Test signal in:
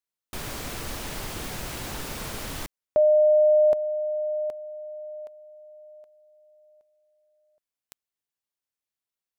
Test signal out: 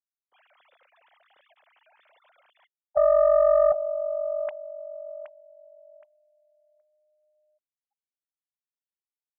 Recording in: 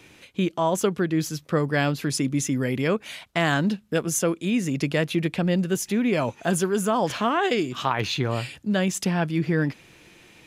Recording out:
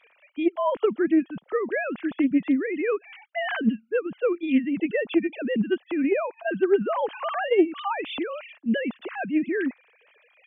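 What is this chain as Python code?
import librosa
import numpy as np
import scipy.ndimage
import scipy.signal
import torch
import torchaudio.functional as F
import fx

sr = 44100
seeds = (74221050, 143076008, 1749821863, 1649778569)

y = fx.sine_speech(x, sr)
y = fx.doppler_dist(y, sr, depth_ms=0.12)
y = y * librosa.db_to_amplitude(-1.0)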